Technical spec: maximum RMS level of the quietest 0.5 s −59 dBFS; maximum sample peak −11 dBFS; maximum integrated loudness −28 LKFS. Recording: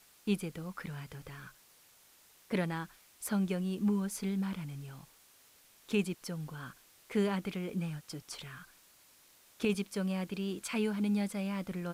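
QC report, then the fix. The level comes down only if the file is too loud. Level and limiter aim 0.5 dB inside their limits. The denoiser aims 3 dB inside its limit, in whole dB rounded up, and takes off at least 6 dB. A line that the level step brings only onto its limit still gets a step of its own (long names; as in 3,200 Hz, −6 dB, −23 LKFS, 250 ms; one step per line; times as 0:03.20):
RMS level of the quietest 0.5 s −63 dBFS: in spec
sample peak −20.0 dBFS: in spec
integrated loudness −36.0 LKFS: in spec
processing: no processing needed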